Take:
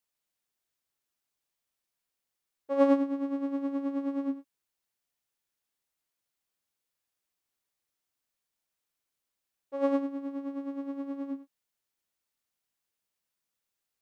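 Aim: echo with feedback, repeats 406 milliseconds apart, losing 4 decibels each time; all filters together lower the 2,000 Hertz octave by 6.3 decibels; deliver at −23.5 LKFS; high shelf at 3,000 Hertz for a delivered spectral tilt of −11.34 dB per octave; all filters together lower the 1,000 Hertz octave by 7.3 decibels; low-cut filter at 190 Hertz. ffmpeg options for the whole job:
ffmpeg -i in.wav -af "highpass=190,equalizer=frequency=1000:width_type=o:gain=-8,equalizer=frequency=2000:width_type=o:gain=-6.5,highshelf=frequency=3000:gain=3.5,aecho=1:1:406|812|1218|1624|2030|2436|2842|3248|3654:0.631|0.398|0.25|0.158|0.0994|0.0626|0.0394|0.0249|0.0157,volume=10.5dB" out.wav

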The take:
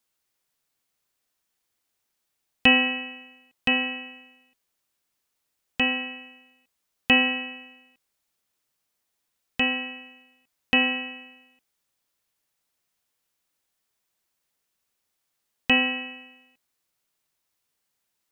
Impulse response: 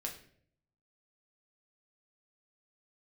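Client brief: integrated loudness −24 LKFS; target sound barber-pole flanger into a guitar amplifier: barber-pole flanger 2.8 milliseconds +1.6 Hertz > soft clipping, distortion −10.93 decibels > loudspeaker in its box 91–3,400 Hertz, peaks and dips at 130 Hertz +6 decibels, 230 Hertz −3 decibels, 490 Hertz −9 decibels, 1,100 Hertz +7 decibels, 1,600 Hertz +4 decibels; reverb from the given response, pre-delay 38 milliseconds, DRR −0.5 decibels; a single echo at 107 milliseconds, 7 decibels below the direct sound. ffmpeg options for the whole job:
-filter_complex "[0:a]aecho=1:1:107:0.447,asplit=2[link_01][link_02];[1:a]atrim=start_sample=2205,adelay=38[link_03];[link_02][link_03]afir=irnorm=-1:irlink=0,volume=1dB[link_04];[link_01][link_04]amix=inputs=2:normalize=0,asplit=2[link_05][link_06];[link_06]adelay=2.8,afreqshift=1.6[link_07];[link_05][link_07]amix=inputs=2:normalize=1,asoftclip=threshold=-17.5dB,highpass=91,equalizer=frequency=130:width_type=q:width=4:gain=6,equalizer=frequency=230:width_type=q:width=4:gain=-3,equalizer=frequency=490:width_type=q:width=4:gain=-9,equalizer=frequency=1100:width_type=q:width=4:gain=7,equalizer=frequency=1600:width_type=q:width=4:gain=4,lowpass=frequency=3400:width=0.5412,lowpass=frequency=3400:width=1.3066,volume=2.5dB"

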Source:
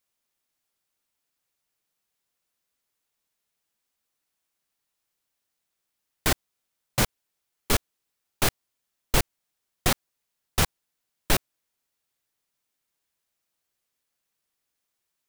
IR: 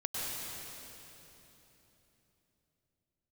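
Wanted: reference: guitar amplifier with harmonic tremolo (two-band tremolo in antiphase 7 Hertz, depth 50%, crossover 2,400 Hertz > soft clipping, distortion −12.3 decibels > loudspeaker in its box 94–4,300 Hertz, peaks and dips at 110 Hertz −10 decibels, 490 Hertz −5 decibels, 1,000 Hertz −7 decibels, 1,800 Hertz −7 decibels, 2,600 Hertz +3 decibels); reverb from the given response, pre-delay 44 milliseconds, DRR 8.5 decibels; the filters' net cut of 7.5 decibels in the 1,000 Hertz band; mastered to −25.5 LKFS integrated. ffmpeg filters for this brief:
-filter_complex "[0:a]equalizer=frequency=1000:width_type=o:gain=-6.5,asplit=2[link_01][link_02];[1:a]atrim=start_sample=2205,adelay=44[link_03];[link_02][link_03]afir=irnorm=-1:irlink=0,volume=-13.5dB[link_04];[link_01][link_04]amix=inputs=2:normalize=0,acrossover=split=2400[link_05][link_06];[link_05]aeval=exprs='val(0)*(1-0.5/2+0.5/2*cos(2*PI*7*n/s))':channel_layout=same[link_07];[link_06]aeval=exprs='val(0)*(1-0.5/2-0.5/2*cos(2*PI*7*n/s))':channel_layout=same[link_08];[link_07][link_08]amix=inputs=2:normalize=0,asoftclip=threshold=-19.5dB,highpass=94,equalizer=frequency=110:width_type=q:width=4:gain=-10,equalizer=frequency=490:width_type=q:width=4:gain=-5,equalizer=frequency=1000:width_type=q:width=4:gain=-7,equalizer=frequency=1800:width_type=q:width=4:gain=-7,equalizer=frequency=2600:width_type=q:width=4:gain=3,lowpass=frequency=4300:width=0.5412,lowpass=frequency=4300:width=1.3066,volume=13.5dB"

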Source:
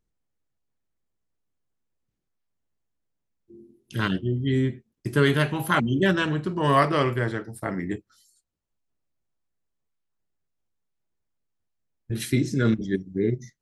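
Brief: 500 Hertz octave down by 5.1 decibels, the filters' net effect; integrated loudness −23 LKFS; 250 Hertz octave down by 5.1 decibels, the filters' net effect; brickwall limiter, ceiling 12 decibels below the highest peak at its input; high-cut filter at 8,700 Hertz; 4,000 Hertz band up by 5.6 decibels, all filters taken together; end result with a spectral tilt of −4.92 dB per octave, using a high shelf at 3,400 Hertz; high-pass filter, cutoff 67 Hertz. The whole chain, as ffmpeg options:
ffmpeg -i in.wav -af "highpass=67,lowpass=8700,equalizer=frequency=250:width_type=o:gain=-5.5,equalizer=frequency=500:width_type=o:gain=-5,highshelf=frequency=3400:gain=7.5,equalizer=frequency=4000:width_type=o:gain=3,volume=7dB,alimiter=limit=-10.5dB:level=0:latency=1" out.wav

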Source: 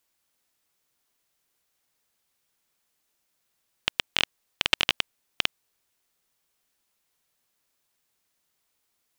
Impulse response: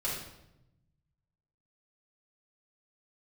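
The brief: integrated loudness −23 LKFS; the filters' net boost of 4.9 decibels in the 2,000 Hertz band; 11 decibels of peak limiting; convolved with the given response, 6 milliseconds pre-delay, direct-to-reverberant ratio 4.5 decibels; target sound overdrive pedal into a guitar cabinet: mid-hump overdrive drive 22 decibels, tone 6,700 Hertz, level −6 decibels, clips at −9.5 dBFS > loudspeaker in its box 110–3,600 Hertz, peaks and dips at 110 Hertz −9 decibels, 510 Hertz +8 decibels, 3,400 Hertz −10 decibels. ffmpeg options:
-filter_complex "[0:a]equalizer=frequency=2000:width_type=o:gain=8,alimiter=limit=-10dB:level=0:latency=1,asplit=2[link_01][link_02];[1:a]atrim=start_sample=2205,adelay=6[link_03];[link_02][link_03]afir=irnorm=-1:irlink=0,volume=-9.5dB[link_04];[link_01][link_04]amix=inputs=2:normalize=0,asplit=2[link_05][link_06];[link_06]highpass=frequency=720:poles=1,volume=22dB,asoftclip=type=tanh:threshold=-9.5dB[link_07];[link_05][link_07]amix=inputs=2:normalize=0,lowpass=frequency=6700:poles=1,volume=-6dB,highpass=110,equalizer=frequency=110:width_type=q:width=4:gain=-9,equalizer=frequency=510:width_type=q:width=4:gain=8,equalizer=frequency=3400:width_type=q:width=4:gain=-10,lowpass=frequency=3600:width=0.5412,lowpass=frequency=3600:width=1.3066,volume=4.5dB"

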